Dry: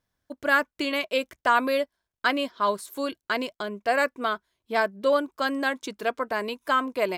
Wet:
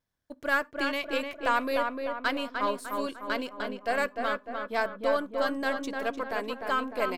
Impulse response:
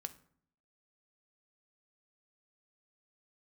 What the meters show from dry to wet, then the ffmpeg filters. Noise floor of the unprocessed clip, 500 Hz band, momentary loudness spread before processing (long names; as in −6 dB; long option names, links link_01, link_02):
below −85 dBFS, −3.5 dB, 8 LU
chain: -filter_complex "[0:a]aeval=exprs='if(lt(val(0),0),0.708*val(0),val(0))':channel_layout=same,asplit=2[link_01][link_02];[link_02]adelay=301,lowpass=frequency=2100:poles=1,volume=-4dB,asplit=2[link_03][link_04];[link_04]adelay=301,lowpass=frequency=2100:poles=1,volume=0.53,asplit=2[link_05][link_06];[link_06]adelay=301,lowpass=frequency=2100:poles=1,volume=0.53,asplit=2[link_07][link_08];[link_08]adelay=301,lowpass=frequency=2100:poles=1,volume=0.53,asplit=2[link_09][link_10];[link_10]adelay=301,lowpass=frequency=2100:poles=1,volume=0.53,asplit=2[link_11][link_12];[link_12]adelay=301,lowpass=frequency=2100:poles=1,volume=0.53,asplit=2[link_13][link_14];[link_14]adelay=301,lowpass=frequency=2100:poles=1,volume=0.53[link_15];[link_01][link_03][link_05][link_07][link_09][link_11][link_13][link_15]amix=inputs=8:normalize=0,asplit=2[link_16][link_17];[1:a]atrim=start_sample=2205,atrim=end_sample=4410[link_18];[link_17][link_18]afir=irnorm=-1:irlink=0,volume=-5.5dB[link_19];[link_16][link_19]amix=inputs=2:normalize=0,volume=-6.5dB"